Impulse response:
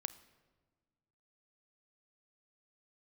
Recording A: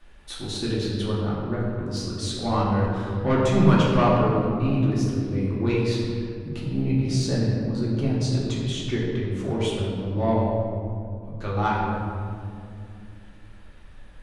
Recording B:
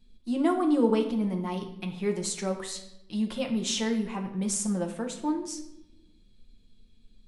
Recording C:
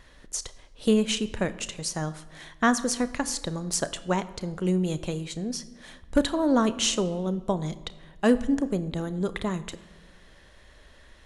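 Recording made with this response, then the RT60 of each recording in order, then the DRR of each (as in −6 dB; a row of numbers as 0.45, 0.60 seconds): C; 2.5, 0.85, 1.5 seconds; −7.0, 3.0, 13.5 decibels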